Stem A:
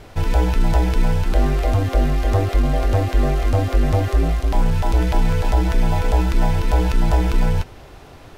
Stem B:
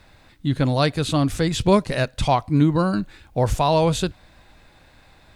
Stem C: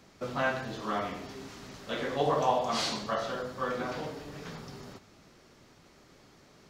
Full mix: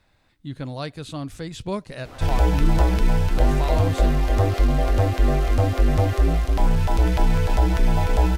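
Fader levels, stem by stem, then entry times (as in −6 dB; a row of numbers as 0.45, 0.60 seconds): −1.5, −11.5, −15.5 decibels; 2.05, 0.00, 1.75 seconds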